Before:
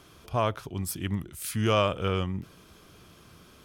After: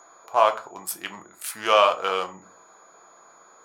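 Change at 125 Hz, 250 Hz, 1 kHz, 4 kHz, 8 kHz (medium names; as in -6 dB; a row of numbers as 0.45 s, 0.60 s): under -20 dB, -11.5 dB, +10.0 dB, +6.0 dB, +3.0 dB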